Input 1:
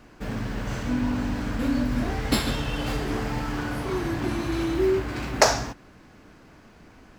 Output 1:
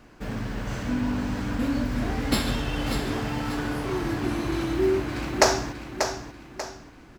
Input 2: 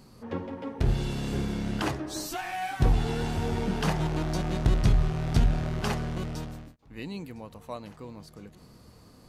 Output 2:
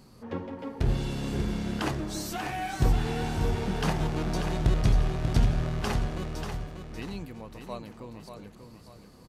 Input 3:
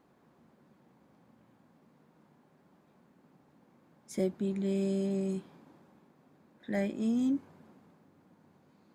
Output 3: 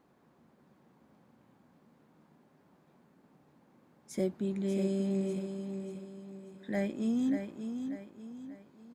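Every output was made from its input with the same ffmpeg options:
-af "aecho=1:1:589|1178|1767|2356:0.422|0.164|0.0641|0.025,volume=-1dB"

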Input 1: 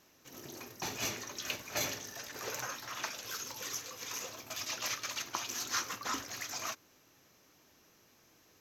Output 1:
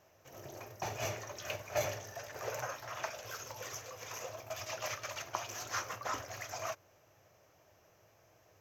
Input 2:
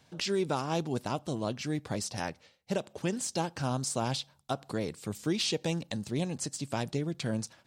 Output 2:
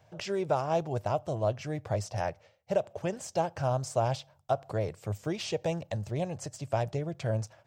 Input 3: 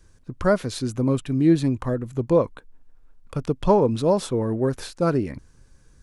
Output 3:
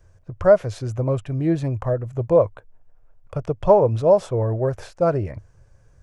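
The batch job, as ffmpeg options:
-af "equalizer=f=100:t=o:w=0.67:g=11,equalizer=f=250:t=o:w=0.67:g=-10,equalizer=f=630:t=o:w=0.67:g=11,equalizer=f=4k:t=o:w=0.67:g=-8,equalizer=f=10k:t=o:w=0.67:g=-11,volume=-1.5dB"

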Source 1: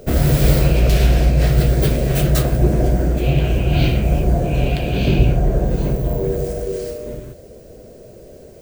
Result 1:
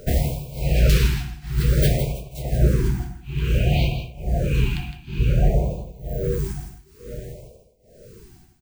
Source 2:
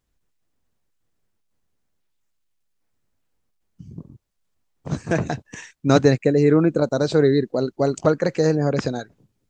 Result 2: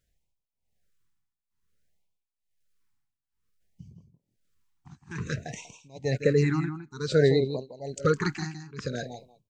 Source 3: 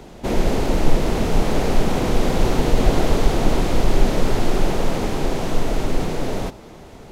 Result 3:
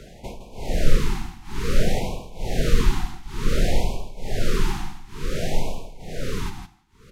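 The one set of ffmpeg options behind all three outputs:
-filter_complex "[0:a]equalizer=f=300:t=o:w=0.81:g=-9,asplit=2[a][b];[b]adelay=190,highpass=300,lowpass=3.4k,asoftclip=type=hard:threshold=-10dB,volume=-17dB[c];[a][c]amix=inputs=2:normalize=0,tremolo=f=1.1:d=0.98,asplit=2[d][e];[e]aecho=0:1:161:0.355[f];[d][f]amix=inputs=2:normalize=0,afftfilt=real='re*(1-between(b*sr/1024,490*pow(1600/490,0.5+0.5*sin(2*PI*0.56*pts/sr))/1.41,490*pow(1600/490,0.5+0.5*sin(2*PI*0.56*pts/sr))*1.41))':imag='im*(1-between(b*sr/1024,490*pow(1600/490,0.5+0.5*sin(2*PI*0.56*pts/sr))/1.41,490*pow(1600/490,0.5+0.5*sin(2*PI*0.56*pts/sr))*1.41))':win_size=1024:overlap=0.75"

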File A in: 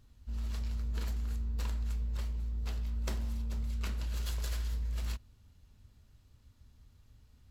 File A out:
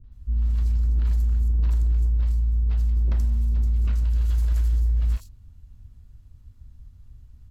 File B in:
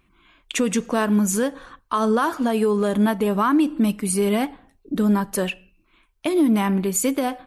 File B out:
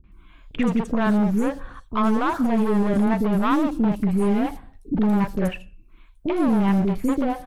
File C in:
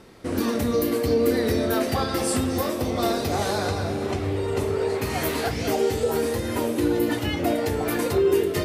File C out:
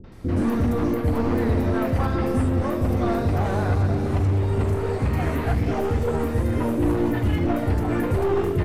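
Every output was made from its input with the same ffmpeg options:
-filter_complex "[0:a]aeval=exprs='0.398*(cos(1*acos(clip(val(0)/0.398,-1,1)))-cos(1*PI/2))+0.0501*(cos(2*acos(clip(val(0)/0.398,-1,1)))-cos(2*PI/2))+0.00631*(cos(5*acos(clip(val(0)/0.398,-1,1)))-cos(5*PI/2))':c=same,acrossover=split=2900[a][b];[a]aemphasis=mode=reproduction:type=bsi[c];[b]acompressor=threshold=-46dB:ratio=10[d];[c][d]amix=inputs=2:normalize=0,volume=16.5dB,asoftclip=hard,volume=-16.5dB,acrossover=split=460|4500[e][f][g];[f]adelay=40[h];[g]adelay=120[i];[e][h][i]amix=inputs=3:normalize=0"

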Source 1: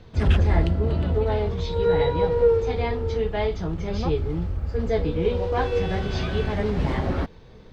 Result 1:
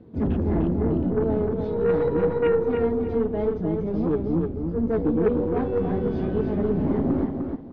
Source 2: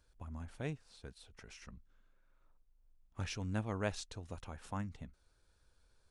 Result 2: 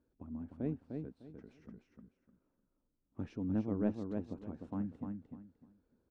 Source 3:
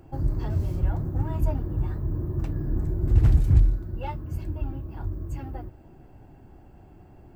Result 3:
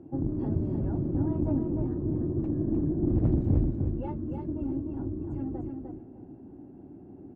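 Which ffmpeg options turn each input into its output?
-filter_complex "[0:a]bandpass=f=270:t=q:w=2.3:csg=0,acontrast=50,aeval=exprs='0.237*(cos(1*acos(clip(val(0)/0.237,-1,1)))-cos(1*PI/2))+0.0335*(cos(4*acos(clip(val(0)/0.237,-1,1)))-cos(4*PI/2))+0.0237*(cos(5*acos(clip(val(0)/0.237,-1,1)))-cos(5*PI/2))+0.0299*(cos(6*acos(clip(val(0)/0.237,-1,1)))-cos(6*PI/2))':c=same,asplit=2[a][b];[b]aecho=0:1:302|604|906:0.562|0.135|0.0324[c];[a][c]amix=inputs=2:normalize=0"

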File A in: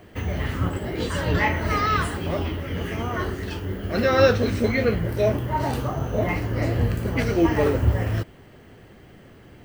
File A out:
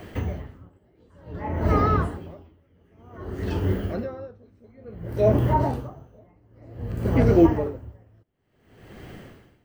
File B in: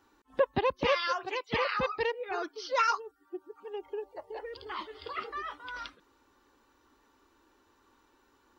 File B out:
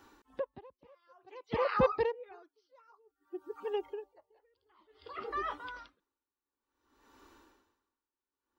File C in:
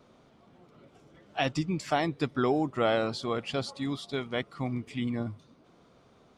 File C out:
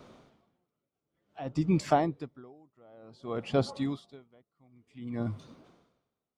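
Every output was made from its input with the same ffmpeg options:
-filter_complex "[0:a]acrossover=split=1100[a][b];[b]acompressor=threshold=-47dB:ratio=5[c];[a][c]amix=inputs=2:normalize=0,aeval=exprs='val(0)*pow(10,-38*(0.5-0.5*cos(2*PI*0.55*n/s))/20)':c=same,volume=6.5dB"

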